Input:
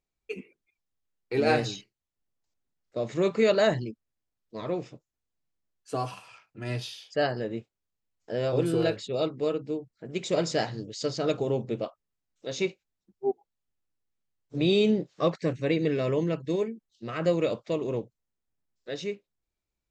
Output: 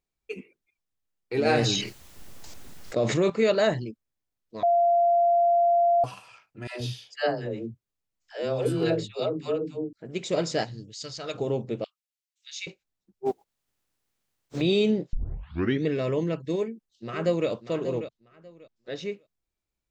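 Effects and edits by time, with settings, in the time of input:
0:01.45–0:03.30: envelope flattener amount 70%
0:04.63–0:06.04: beep over 690 Hz −17.5 dBFS
0:06.67–0:09.93: all-pass dispersion lows, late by 137 ms, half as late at 460 Hz
0:10.63–0:11.34: parametric band 1,300 Hz → 200 Hz −14 dB 2.8 octaves
0:11.84–0:12.67: inverse Chebyshev high-pass filter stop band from 370 Hz, stop band 80 dB
0:13.25–0:14.60: compressing power law on the bin magnitudes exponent 0.67
0:15.13: tape start 0.73 s
0:16.54–0:17.49: delay throw 590 ms, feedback 20%, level −10.5 dB
0:18.00–0:19.12: Bessel low-pass filter 5,900 Hz

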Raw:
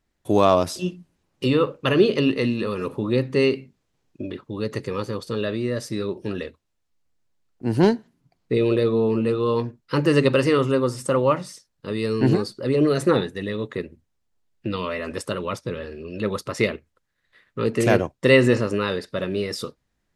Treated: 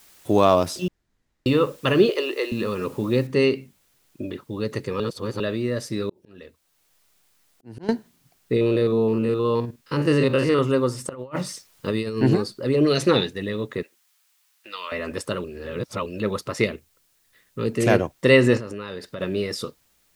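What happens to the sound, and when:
0:00.88–0:01.46: fill with room tone
0:02.09–0:02.52: elliptic high-pass filter 340 Hz
0:03.27: noise floor change −53 dB −65 dB
0:05.00–0:05.40: reverse
0:06.09–0:07.89: volume swells 696 ms
0:08.56–0:10.59: spectrum averaged block by block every 50 ms
0:11.09–0:12.18: compressor whose output falls as the input rises −27 dBFS, ratio −0.5
0:12.86–0:13.33: flat-topped bell 3,800 Hz +8.5 dB
0:13.83–0:14.92: high-pass filter 1,100 Hz
0:15.44–0:16.06: reverse
0:16.64–0:17.82: parametric band 1,100 Hz −5 dB 2.9 octaves
0:18.57–0:19.21: downward compressor, threshold −29 dBFS

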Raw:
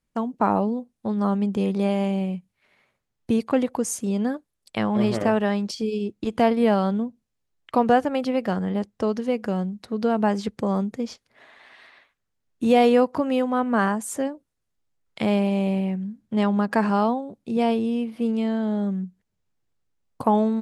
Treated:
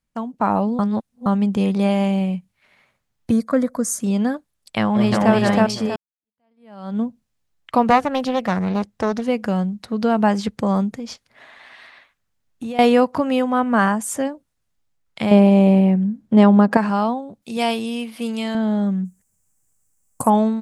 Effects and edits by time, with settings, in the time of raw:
0:00.79–0:01.26: reverse
0:03.31–0:04.00: phaser with its sweep stopped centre 560 Hz, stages 8
0:04.80–0:05.34: delay throw 320 ms, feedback 30%, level 0 dB
0:05.96–0:07.00: fade in exponential
0:07.90–0:09.22: highs frequency-modulated by the lows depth 0.35 ms
0:10.93–0:12.79: downward compressor, threshold −30 dBFS
0:13.39–0:14.25: notch filter 4,100 Hz, Q 14
0:15.31–0:16.77: parametric band 370 Hz +11 dB 2.7 octaves
0:17.42–0:18.55: spectral tilt +3 dB per octave
0:19.05–0:20.30: high shelf with overshoot 5,600 Hz +13.5 dB, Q 3
whole clip: parametric band 390 Hz −5.5 dB 0.88 octaves; automatic gain control gain up to 6 dB

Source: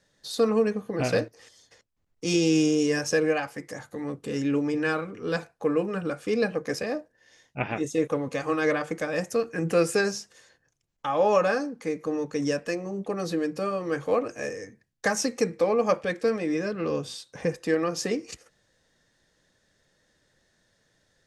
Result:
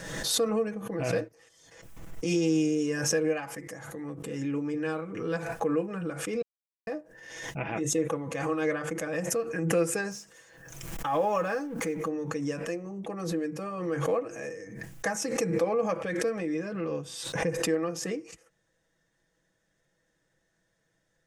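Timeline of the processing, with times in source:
0:06.42–0:06.87: silence
0:10.11–0:12.08: mu-law and A-law mismatch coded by mu
whole clip: parametric band 4,300 Hz −8.5 dB 0.67 octaves; comb filter 6.1 ms, depth 48%; background raised ahead of every attack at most 47 dB per second; level −6.5 dB

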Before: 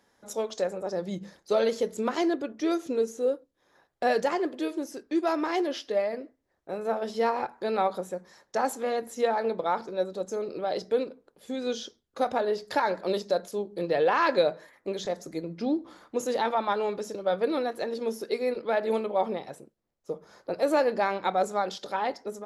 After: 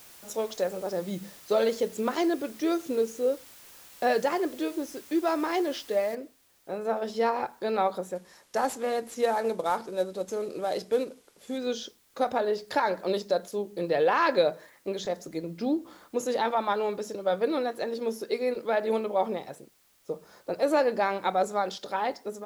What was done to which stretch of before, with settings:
0:06.15: noise floor change −51 dB −65 dB
0:08.15–0:11.58: variable-slope delta modulation 64 kbit/s

